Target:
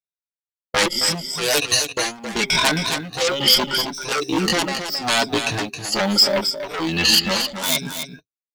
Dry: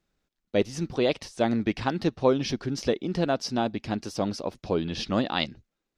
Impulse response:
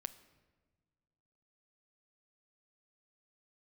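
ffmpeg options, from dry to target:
-filter_complex "[0:a]afftfilt=real='re*pow(10,22/40*sin(2*PI*(1.6*log(max(b,1)*sr/1024/100)/log(2)-(1.1)*(pts-256)/sr)))':imag='im*pow(10,22/40*sin(2*PI*(1.6*log(max(b,1)*sr/1024/100)/log(2)-(1.1)*(pts-256)/sr)))':win_size=1024:overlap=0.75,asplit=2[link_01][link_02];[link_02]aeval=exprs='0.668*sin(PI/2*8.91*val(0)/0.668)':channel_layout=same,volume=-9dB[link_03];[link_01][link_03]amix=inputs=2:normalize=0,flanger=delay=4.7:depth=2.8:regen=-10:speed=1.2:shape=sinusoidal,bandreject=frequency=132.7:width_type=h:width=4,bandreject=frequency=265.4:width_type=h:width=4,bandreject=frequency=398.1:width_type=h:width=4,agate=range=-50dB:threshold=-25dB:ratio=16:detection=peak,tremolo=f=1.6:d=0.96,lowshelf=frequency=290:gain=-10.5,acompressor=threshold=-30dB:ratio=2,highshelf=frequency=3600:gain=9,acrusher=bits=8:mode=log:mix=0:aa=0.000001,atempo=0.7,aecho=1:1:268:0.376,volume=7.5dB"

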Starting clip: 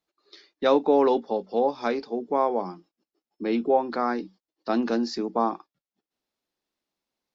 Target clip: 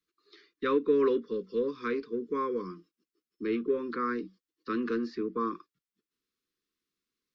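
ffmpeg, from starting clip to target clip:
ffmpeg -i in.wav -filter_complex "[0:a]acrossover=split=290|3000[link_01][link_02][link_03];[link_01]asoftclip=type=tanh:threshold=-36dB[link_04];[link_03]acompressor=threshold=-60dB:ratio=10[link_05];[link_04][link_02][link_05]amix=inputs=3:normalize=0,asuperstop=centerf=720:order=12:qfactor=1.3,volume=-2dB" out.wav

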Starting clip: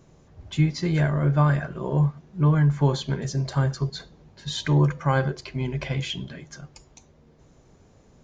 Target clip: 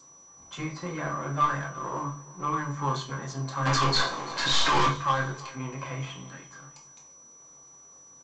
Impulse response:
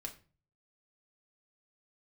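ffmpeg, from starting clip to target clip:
-filter_complex "[0:a]aeval=exprs='if(lt(val(0),0),0.251*val(0),val(0))':channel_layout=same,highpass=frequency=330:poles=1,asplit=3[link_01][link_02][link_03];[link_01]afade=type=out:start_time=0.71:duration=0.02[link_04];[link_02]aemphasis=mode=reproduction:type=75fm,afade=type=in:start_time=0.71:duration=0.02,afade=type=out:start_time=1.21:duration=0.02[link_05];[link_03]afade=type=in:start_time=1.21:duration=0.02[link_06];[link_04][link_05][link_06]amix=inputs=3:normalize=0,asettb=1/sr,asplit=3[link_07][link_08][link_09];[link_07]atrim=end=5.594[link_10];[link_08]atrim=start=5.59:end=6.6,asetpts=PTS-STARTPTS,afade=type=in:duration=0.004:curve=qsin,afade=type=out:start_time=1.006:duration=0.004:curve=qsin,acrossover=split=3000[link_11][link_12];[link_12]acompressor=threshold=-53dB:ratio=4:attack=1:release=60[link_13];[link_11][link_13]amix=inputs=2:normalize=0[link_14];[link_09]atrim=start=6.596[link_15];[link_10][link_14]acrossfade=duration=0.004:curve1=hsin:curve2=qsin[link_16];[link_16][link_15]acrossfade=duration=0.004:curve1=qsin:curve2=hsin,equalizer=frequency=1100:width_type=o:width=0.52:gain=14.5,asplit=3[link_17][link_18][link_19];[link_17]afade=type=out:start_time=3.65:duration=0.02[link_20];[link_18]asplit=2[link_21][link_22];[link_22]highpass=frequency=720:poles=1,volume=36dB,asoftclip=type=tanh:threshold=-12.5dB[link_23];[link_21][link_23]amix=inputs=2:normalize=0,lowpass=frequency=6000:poles=1,volume=-6dB,afade=type=in:start_time=3.65:duration=0.02,afade=type=out:start_time=4.87:duration=0.02[link_24];[link_19]afade=type=in:start_time=4.87:duration=0.02[link_25];[link_20][link_24][link_25]amix=inputs=3:normalize=0,asoftclip=type=tanh:threshold=-15dB,aeval=exprs='val(0)+0.00316*sin(2*PI*5900*n/s)':channel_layout=same,asplit=2[link_26][link_27];[link_27]adelay=22,volume=-7.5dB[link_28];[link_26][link_28]amix=inputs=2:normalize=0,aecho=1:1:340|680:0.0944|0.0283[link_29];[1:a]atrim=start_sample=2205,afade=type=out:start_time=0.44:duration=0.01,atrim=end_sample=19845[link_30];[link_29][link_30]afir=irnorm=-1:irlink=0" -ar 16000 -c:a g722

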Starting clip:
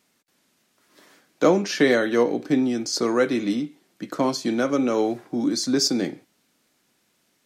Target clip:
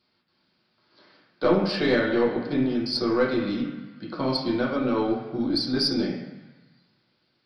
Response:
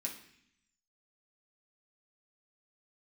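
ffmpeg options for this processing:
-filter_complex "[0:a]aresample=11025,aresample=44100[link_01];[1:a]atrim=start_sample=2205,asetrate=25578,aresample=44100[link_02];[link_01][link_02]afir=irnorm=-1:irlink=0,aeval=exprs='(tanh(2*val(0)+0.3)-tanh(0.3))/2':channel_layout=same,volume=-4dB"

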